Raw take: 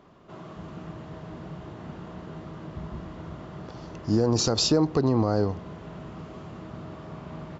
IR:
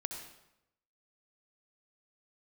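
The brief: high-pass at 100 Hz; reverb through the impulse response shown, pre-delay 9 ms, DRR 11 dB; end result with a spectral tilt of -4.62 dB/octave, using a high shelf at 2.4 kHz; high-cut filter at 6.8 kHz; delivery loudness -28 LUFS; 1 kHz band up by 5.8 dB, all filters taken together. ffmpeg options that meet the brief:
-filter_complex "[0:a]highpass=100,lowpass=6800,equalizer=f=1000:t=o:g=6.5,highshelf=f=2400:g=5.5,asplit=2[s0][s1];[1:a]atrim=start_sample=2205,adelay=9[s2];[s1][s2]afir=irnorm=-1:irlink=0,volume=0.282[s3];[s0][s3]amix=inputs=2:normalize=0,volume=0.531"

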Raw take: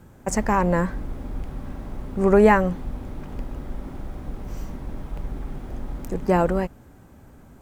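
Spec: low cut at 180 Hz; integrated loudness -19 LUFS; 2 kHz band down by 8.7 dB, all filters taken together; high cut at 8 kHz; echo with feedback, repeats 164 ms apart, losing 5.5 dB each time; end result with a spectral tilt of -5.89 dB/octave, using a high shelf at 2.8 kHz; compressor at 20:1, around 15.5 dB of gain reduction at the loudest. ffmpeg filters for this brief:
-af "highpass=180,lowpass=8000,equalizer=f=2000:t=o:g=-9,highshelf=f=2800:g=-6,acompressor=threshold=0.0447:ratio=20,aecho=1:1:164|328|492|656|820|984|1148:0.531|0.281|0.149|0.079|0.0419|0.0222|0.0118,volume=6.68"

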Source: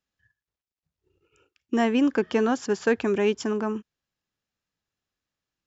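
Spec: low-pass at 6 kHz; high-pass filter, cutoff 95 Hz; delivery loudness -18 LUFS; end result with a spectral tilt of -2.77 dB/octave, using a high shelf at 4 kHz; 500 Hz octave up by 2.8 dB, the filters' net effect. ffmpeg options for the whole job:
-af "highpass=95,lowpass=6000,equalizer=f=500:t=o:g=3.5,highshelf=f=4000:g=-8,volume=1.78"

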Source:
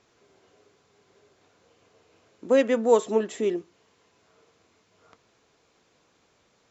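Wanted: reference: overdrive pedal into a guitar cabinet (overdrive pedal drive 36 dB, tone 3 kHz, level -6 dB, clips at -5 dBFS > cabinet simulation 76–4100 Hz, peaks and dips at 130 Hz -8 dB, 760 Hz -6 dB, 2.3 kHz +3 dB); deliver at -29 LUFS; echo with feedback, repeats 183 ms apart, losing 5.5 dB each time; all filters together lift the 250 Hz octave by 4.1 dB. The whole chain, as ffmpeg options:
-filter_complex "[0:a]equalizer=f=250:t=o:g=5,aecho=1:1:183|366|549|732|915|1098|1281:0.531|0.281|0.149|0.079|0.0419|0.0222|0.0118,asplit=2[s0][s1];[s1]highpass=f=720:p=1,volume=63.1,asoftclip=type=tanh:threshold=0.562[s2];[s0][s2]amix=inputs=2:normalize=0,lowpass=f=3000:p=1,volume=0.501,highpass=76,equalizer=f=130:t=q:w=4:g=-8,equalizer=f=760:t=q:w=4:g=-6,equalizer=f=2300:t=q:w=4:g=3,lowpass=f=4100:w=0.5412,lowpass=f=4100:w=1.3066,volume=0.178"

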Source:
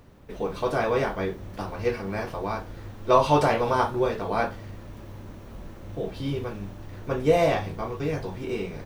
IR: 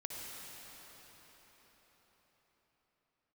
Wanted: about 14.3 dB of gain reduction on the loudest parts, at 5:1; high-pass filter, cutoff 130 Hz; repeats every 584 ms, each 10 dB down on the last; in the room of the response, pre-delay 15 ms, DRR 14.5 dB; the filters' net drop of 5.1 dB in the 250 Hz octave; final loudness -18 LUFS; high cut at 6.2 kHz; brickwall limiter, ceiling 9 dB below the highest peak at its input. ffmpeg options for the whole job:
-filter_complex "[0:a]highpass=130,lowpass=6200,equalizer=f=250:t=o:g=-7,acompressor=threshold=0.0251:ratio=5,alimiter=level_in=1.88:limit=0.0631:level=0:latency=1,volume=0.531,aecho=1:1:584|1168|1752|2336:0.316|0.101|0.0324|0.0104,asplit=2[s0][s1];[1:a]atrim=start_sample=2205,adelay=15[s2];[s1][s2]afir=irnorm=-1:irlink=0,volume=0.188[s3];[s0][s3]amix=inputs=2:normalize=0,volume=12.6"

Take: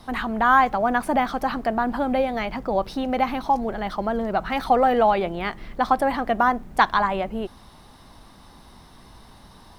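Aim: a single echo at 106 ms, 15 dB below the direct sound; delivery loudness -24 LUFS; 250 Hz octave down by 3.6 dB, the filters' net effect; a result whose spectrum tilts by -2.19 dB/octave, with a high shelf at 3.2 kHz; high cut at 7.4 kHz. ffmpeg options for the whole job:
-af "lowpass=7400,equalizer=f=250:t=o:g=-4,highshelf=f=3200:g=4,aecho=1:1:106:0.178,volume=0.841"

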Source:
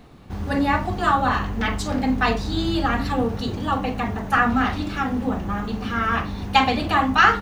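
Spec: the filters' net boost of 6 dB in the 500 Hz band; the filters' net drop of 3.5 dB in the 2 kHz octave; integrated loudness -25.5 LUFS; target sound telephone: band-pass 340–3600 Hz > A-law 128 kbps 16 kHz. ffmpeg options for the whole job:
-af "highpass=340,lowpass=3600,equalizer=f=500:t=o:g=8.5,equalizer=f=2000:t=o:g=-5,volume=0.708" -ar 16000 -c:a pcm_alaw

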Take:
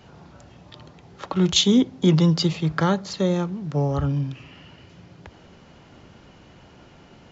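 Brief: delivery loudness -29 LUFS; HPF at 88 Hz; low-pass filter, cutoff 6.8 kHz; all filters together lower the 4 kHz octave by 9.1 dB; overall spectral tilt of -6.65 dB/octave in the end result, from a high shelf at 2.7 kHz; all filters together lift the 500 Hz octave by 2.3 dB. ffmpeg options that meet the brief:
-af "highpass=88,lowpass=6800,equalizer=f=500:t=o:g=3.5,highshelf=f=2700:g=-8,equalizer=f=4000:t=o:g=-4.5,volume=0.447"

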